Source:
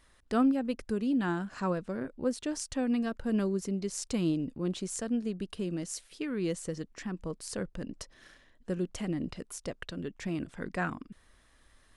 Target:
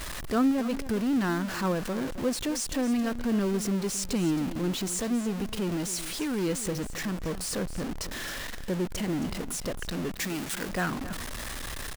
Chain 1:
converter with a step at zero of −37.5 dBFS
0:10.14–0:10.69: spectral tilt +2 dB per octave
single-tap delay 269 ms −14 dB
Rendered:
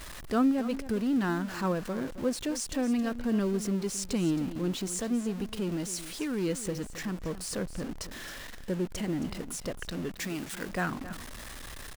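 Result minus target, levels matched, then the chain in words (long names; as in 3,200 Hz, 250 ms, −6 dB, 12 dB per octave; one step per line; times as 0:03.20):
converter with a step at zero: distortion −5 dB
converter with a step at zero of −30.5 dBFS
0:10.14–0:10.69: spectral tilt +2 dB per octave
single-tap delay 269 ms −14 dB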